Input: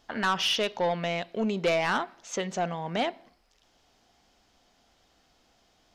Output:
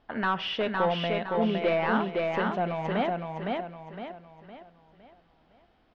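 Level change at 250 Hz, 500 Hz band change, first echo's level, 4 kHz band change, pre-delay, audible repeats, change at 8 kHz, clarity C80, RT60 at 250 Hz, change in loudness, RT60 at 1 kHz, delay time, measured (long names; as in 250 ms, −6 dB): +3.5 dB, +2.0 dB, −3.0 dB, −5.0 dB, no reverb audible, 5, below −20 dB, no reverb audible, no reverb audible, +0.5 dB, no reverb audible, 511 ms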